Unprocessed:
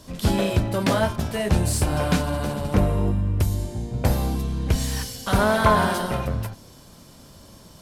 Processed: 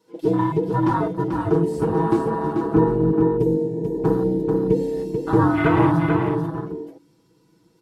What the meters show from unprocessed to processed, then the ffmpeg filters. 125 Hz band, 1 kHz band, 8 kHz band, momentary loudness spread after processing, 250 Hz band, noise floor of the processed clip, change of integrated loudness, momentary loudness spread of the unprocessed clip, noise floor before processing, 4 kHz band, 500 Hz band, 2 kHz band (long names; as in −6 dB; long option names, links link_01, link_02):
−0.5 dB, +1.0 dB, below −15 dB, 8 LU, +6.0 dB, −60 dBFS, +2.5 dB, 8 LU, −48 dBFS, below −10 dB, +5.5 dB, −3.5 dB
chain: -filter_complex "[0:a]afftfilt=real='real(if(between(b,1,1008),(2*floor((b-1)/24)+1)*24-b,b),0)':imag='imag(if(between(b,1,1008),(2*floor((b-1)/24)+1)*24-b,b),0)*if(between(b,1,1008),-1,1)':win_size=2048:overlap=0.75,afwtdn=0.0708,highpass=100,highshelf=frequency=5100:gain=-7.5,bandreject=frequency=144.3:width_type=h:width=4,bandreject=frequency=288.6:width_type=h:width=4,asplit=2[link_01][link_02];[link_02]aecho=0:1:439:0.531[link_03];[link_01][link_03]amix=inputs=2:normalize=0,asubboost=boost=6:cutoff=210,aecho=1:1:6.2:0.92,volume=-1.5dB"